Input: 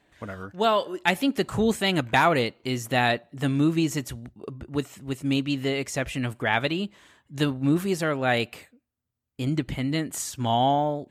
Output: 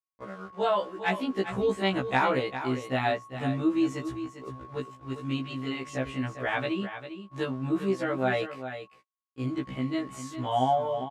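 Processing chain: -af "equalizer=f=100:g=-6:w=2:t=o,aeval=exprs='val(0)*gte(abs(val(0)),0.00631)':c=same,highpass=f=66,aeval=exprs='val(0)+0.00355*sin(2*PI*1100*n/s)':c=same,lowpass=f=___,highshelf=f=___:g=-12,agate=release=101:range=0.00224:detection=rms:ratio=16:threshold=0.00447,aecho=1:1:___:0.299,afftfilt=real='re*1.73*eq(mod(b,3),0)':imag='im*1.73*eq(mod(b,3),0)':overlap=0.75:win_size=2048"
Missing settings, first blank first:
9300, 3000, 400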